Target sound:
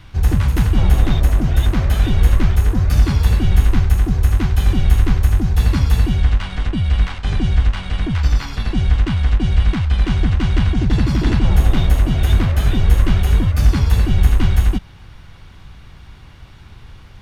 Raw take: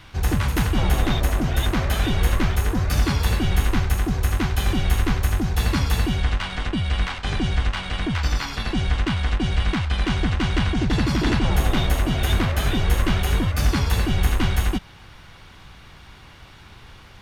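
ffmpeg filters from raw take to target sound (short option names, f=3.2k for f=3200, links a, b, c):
-af "lowshelf=f=210:g=10.5,volume=-2dB"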